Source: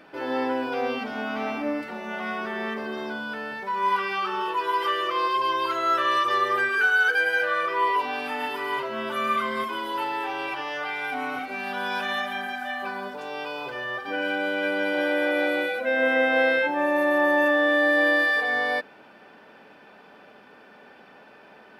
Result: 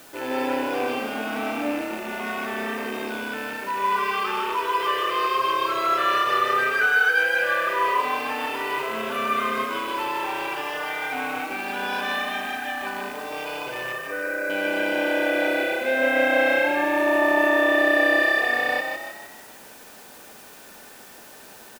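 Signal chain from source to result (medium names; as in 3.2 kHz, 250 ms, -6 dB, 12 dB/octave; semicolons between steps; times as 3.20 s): rattle on loud lows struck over -44 dBFS, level -27 dBFS; added noise white -49 dBFS; 13.92–14.50 s: static phaser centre 830 Hz, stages 6; frequency-shifting echo 153 ms, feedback 48%, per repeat +32 Hz, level -5 dB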